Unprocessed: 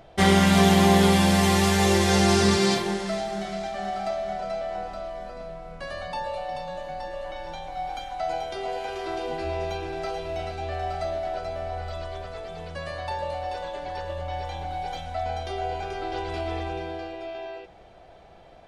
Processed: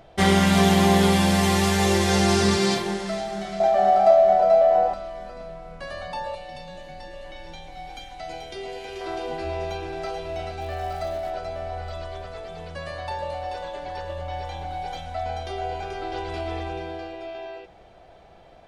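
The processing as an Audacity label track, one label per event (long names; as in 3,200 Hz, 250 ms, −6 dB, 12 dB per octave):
3.600000	4.940000	parametric band 630 Hz +15 dB 1.4 octaves
6.350000	9.010000	flat-topped bell 920 Hz −8 dB
10.590000	11.300000	surface crackle 470 per second −40 dBFS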